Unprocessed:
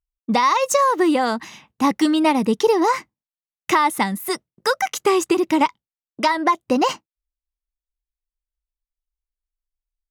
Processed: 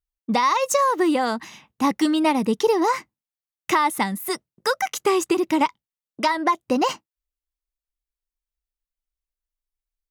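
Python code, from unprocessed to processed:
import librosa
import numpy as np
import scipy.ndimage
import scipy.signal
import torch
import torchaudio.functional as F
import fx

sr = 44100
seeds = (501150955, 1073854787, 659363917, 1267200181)

y = fx.high_shelf(x, sr, hz=12000.0, db=3.5)
y = y * 10.0 ** (-2.5 / 20.0)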